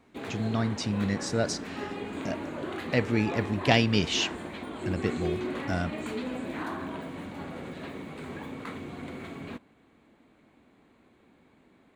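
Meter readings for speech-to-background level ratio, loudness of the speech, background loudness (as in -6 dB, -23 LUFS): 7.5 dB, -29.5 LUFS, -37.0 LUFS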